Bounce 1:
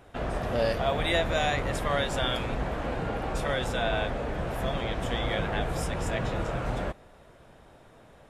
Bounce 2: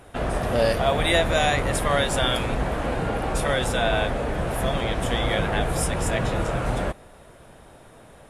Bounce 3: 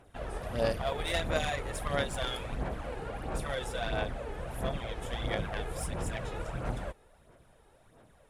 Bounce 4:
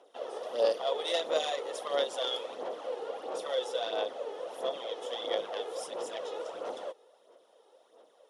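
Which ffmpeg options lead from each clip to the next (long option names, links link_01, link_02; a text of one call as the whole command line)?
ffmpeg -i in.wav -af "equalizer=frequency=10000:width=1.8:gain=10.5,volume=5.5dB" out.wav
ffmpeg -i in.wav -af "aeval=exprs='0.422*(cos(1*acos(clip(val(0)/0.422,-1,1)))-cos(1*PI/2))+0.075*(cos(3*acos(clip(val(0)/0.422,-1,1)))-cos(3*PI/2))':channel_layout=same,aphaser=in_gain=1:out_gain=1:delay=2.4:decay=0.48:speed=1.5:type=sinusoidal,volume=-8.5dB" out.wav
ffmpeg -i in.wav -af "highpass=frequency=360:width=0.5412,highpass=frequency=360:width=1.3066,equalizer=frequency=500:width_type=q:width=4:gain=8,equalizer=frequency=1600:width_type=q:width=4:gain=-9,equalizer=frequency=2300:width_type=q:width=4:gain=-9,equalizer=frequency=3300:width_type=q:width=4:gain=6,equalizer=frequency=5600:width_type=q:width=4:gain=5,equalizer=frequency=8000:width_type=q:width=4:gain=-7,lowpass=frequency=9500:width=0.5412,lowpass=frequency=9500:width=1.3066" out.wav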